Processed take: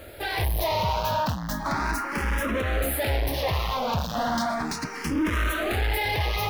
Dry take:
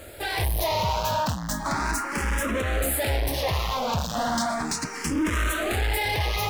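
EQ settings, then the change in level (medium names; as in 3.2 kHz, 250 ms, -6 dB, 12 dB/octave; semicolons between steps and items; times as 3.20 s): peaking EQ 7.8 kHz -12 dB 0.65 oct; 0.0 dB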